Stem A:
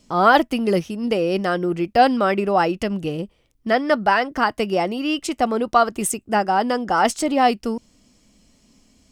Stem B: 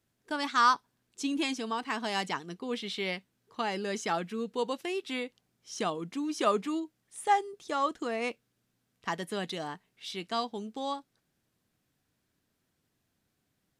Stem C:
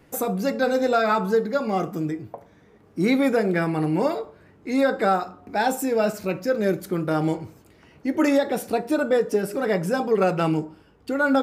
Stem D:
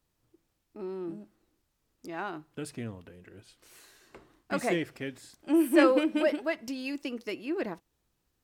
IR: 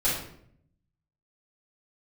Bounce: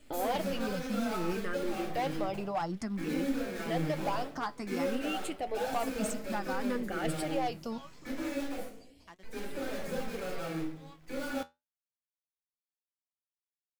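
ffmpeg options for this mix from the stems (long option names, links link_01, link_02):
-filter_complex "[0:a]asplit=2[link_01][link_02];[link_02]afreqshift=0.57[link_03];[link_01][link_03]amix=inputs=2:normalize=1,volume=2dB[link_04];[1:a]aeval=exprs='sgn(val(0))*max(abs(val(0))-0.0106,0)':channel_layout=same,volume=-14.5dB[link_05];[2:a]acompressor=threshold=-28dB:ratio=5,acrusher=bits=6:dc=4:mix=0:aa=0.000001,volume=-9dB,asplit=3[link_06][link_07][link_08];[link_06]atrim=end=8.69,asetpts=PTS-STARTPTS,afade=type=out:start_time=8.686:duration=0.004:curve=hsin[link_09];[link_07]atrim=start=8.69:end=9.23,asetpts=PTS-STARTPTS,volume=0[link_10];[link_08]atrim=start=9.23,asetpts=PTS-STARTPTS,afade=type=in:duration=0.004:curve=hsin[link_11];[link_09][link_10][link_11]concat=n=3:v=0:a=1,asplit=2[link_12][link_13];[link_13]volume=-6.5dB[link_14];[3:a]highpass=1400,adelay=1950,volume=-18.5dB[link_15];[link_04][link_05]amix=inputs=2:normalize=0,asoftclip=type=hard:threshold=-12.5dB,alimiter=limit=-24dB:level=0:latency=1:release=358,volume=0dB[link_16];[link_12][link_15]amix=inputs=2:normalize=0,aeval=exprs='val(0)*sin(2*PI*2000*n/s)':channel_layout=same,alimiter=level_in=15dB:limit=-24dB:level=0:latency=1,volume=-15dB,volume=0dB[link_17];[4:a]atrim=start_sample=2205[link_18];[link_14][link_18]afir=irnorm=-1:irlink=0[link_19];[link_16][link_17][link_19]amix=inputs=3:normalize=0,flanger=delay=3.3:depth=9.3:regen=67:speed=0.31:shape=sinusoidal"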